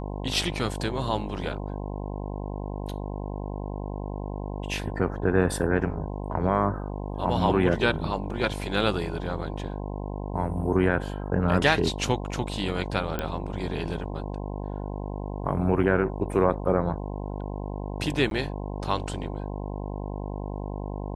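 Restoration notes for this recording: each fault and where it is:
mains buzz 50 Hz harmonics 21 −33 dBFS
0:13.19: click −14 dBFS
0:18.30–0:18.31: drop-out

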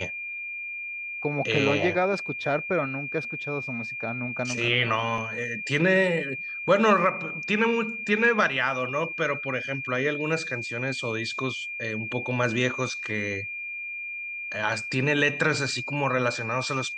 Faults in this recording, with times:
whistle 2,400 Hz −32 dBFS
0:05.18: drop-out 2 ms

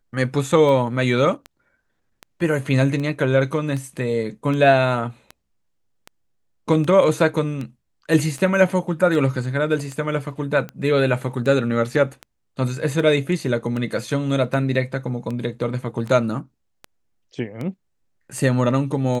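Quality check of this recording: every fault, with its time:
scratch tick 78 rpm

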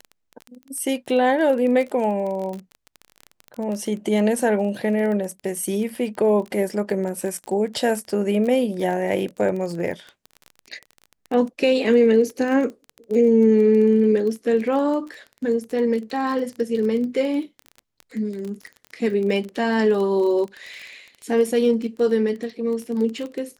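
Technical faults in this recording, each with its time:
surface crackle 22 per second −28 dBFS

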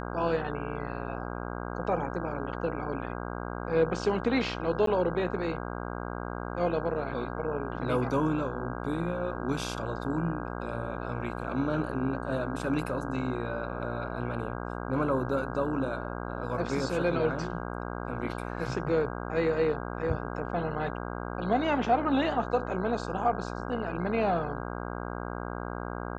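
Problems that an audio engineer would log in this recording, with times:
mains buzz 60 Hz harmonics 27 −36 dBFS
0:04.86–0:04.87: drop-out 13 ms

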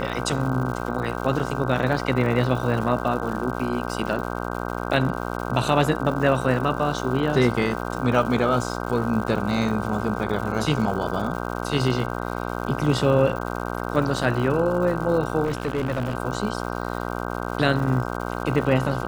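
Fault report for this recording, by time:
mains buzz 60 Hz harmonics 26 −29 dBFS
surface crackle 210 per second −32 dBFS
0:15.44–0:16.15: clipping −20 dBFS

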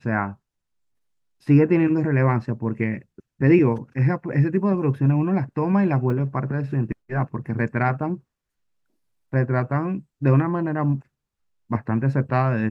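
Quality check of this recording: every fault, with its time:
0:06.10: drop-out 3 ms

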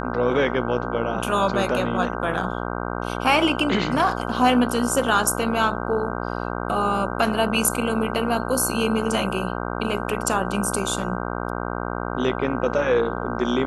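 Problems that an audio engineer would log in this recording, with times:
mains buzz 60 Hz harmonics 26 −28 dBFS

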